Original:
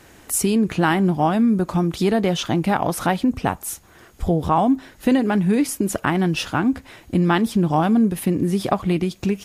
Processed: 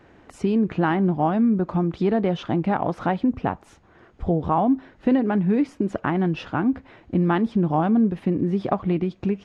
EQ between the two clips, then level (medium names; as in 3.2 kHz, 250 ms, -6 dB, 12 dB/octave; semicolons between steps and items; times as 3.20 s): tape spacing loss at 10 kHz 35 dB; bass shelf 110 Hz -6.5 dB; 0.0 dB